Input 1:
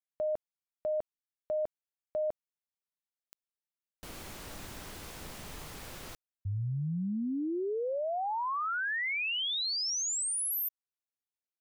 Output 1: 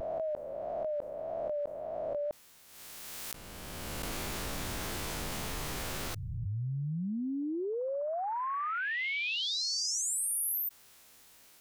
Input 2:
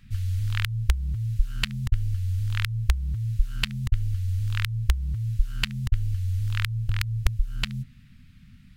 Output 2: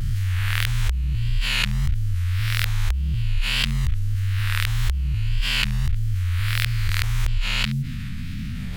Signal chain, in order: spectral swells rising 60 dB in 1.00 s; vibrato 1.7 Hz 91 cents; fast leveller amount 70%; gain -5.5 dB

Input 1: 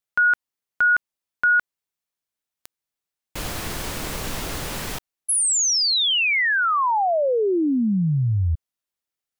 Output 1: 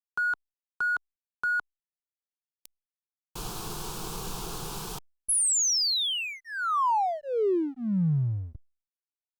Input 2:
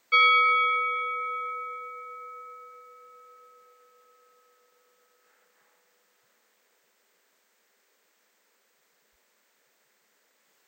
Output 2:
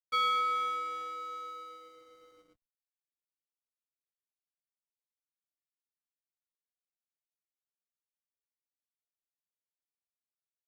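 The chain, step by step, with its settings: fixed phaser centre 390 Hz, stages 8; backlash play -38 dBFS; gain -3.5 dB; Opus 256 kbps 48000 Hz

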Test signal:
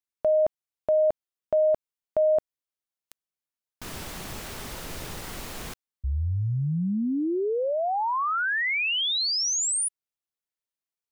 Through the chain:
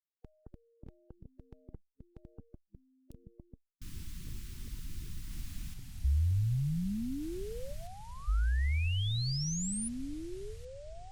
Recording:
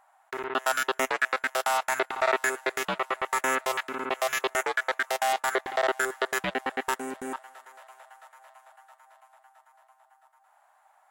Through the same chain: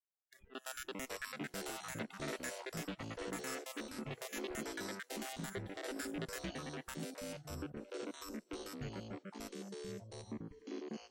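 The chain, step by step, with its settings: spectral noise reduction 29 dB; echoes that change speed 0.213 s, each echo -5 st, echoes 3; passive tone stack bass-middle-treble 10-0-1; gain +7.5 dB

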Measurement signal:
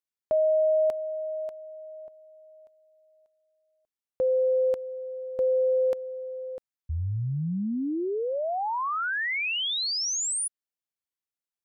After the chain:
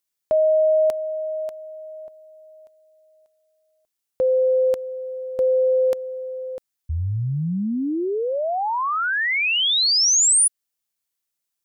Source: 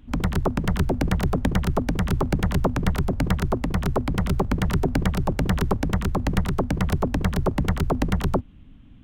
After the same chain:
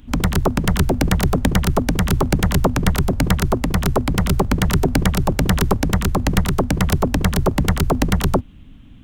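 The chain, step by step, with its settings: high shelf 3800 Hz +9 dB; gain +5 dB

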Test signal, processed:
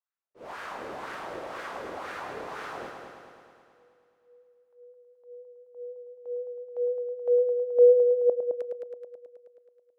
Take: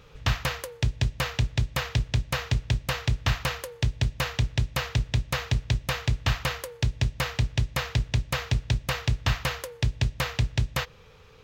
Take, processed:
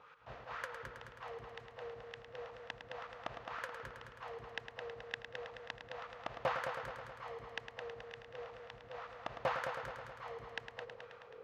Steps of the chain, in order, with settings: auto swell 0.165 s; wah 2 Hz 460–1500 Hz, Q 2.7; multi-head echo 0.107 s, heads first and second, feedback 62%, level -9 dB; gain +4 dB

